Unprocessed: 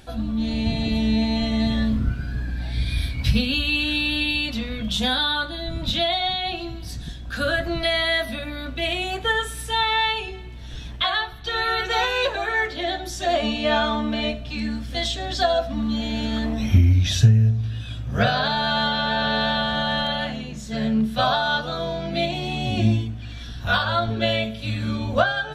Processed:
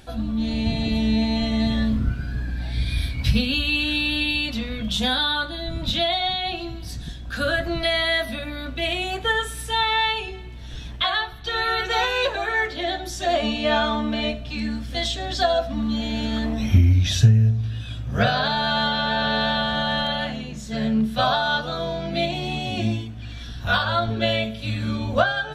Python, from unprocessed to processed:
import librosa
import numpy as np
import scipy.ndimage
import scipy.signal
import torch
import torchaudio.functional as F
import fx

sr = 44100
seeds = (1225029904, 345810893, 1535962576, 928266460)

y = fx.low_shelf(x, sr, hz=220.0, db=-7.5, at=(22.59, 23.17))